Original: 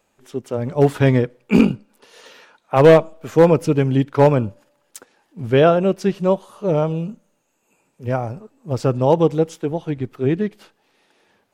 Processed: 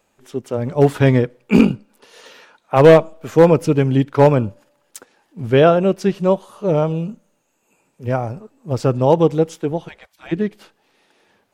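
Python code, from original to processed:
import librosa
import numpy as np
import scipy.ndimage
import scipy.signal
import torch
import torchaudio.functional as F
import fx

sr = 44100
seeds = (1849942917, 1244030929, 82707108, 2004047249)

y = fx.spec_gate(x, sr, threshold_db=-25, keep='weak', at=(9.87, 10.31), fade=0.02)
y = y * librosa.db_to_amplitude(1.5)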